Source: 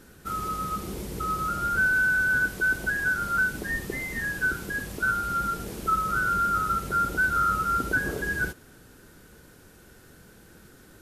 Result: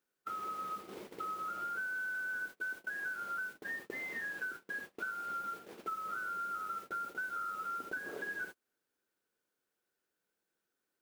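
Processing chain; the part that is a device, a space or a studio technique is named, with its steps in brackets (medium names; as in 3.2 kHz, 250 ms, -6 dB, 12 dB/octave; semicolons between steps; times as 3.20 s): baby monitor (band-pass 380–3200 Hz; compression 6:1, threshold -34 dBFS, peak gain reduction 13 dB; white noise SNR 19 dB; gate -41 dBFS, range -29 dB); trim -4 dB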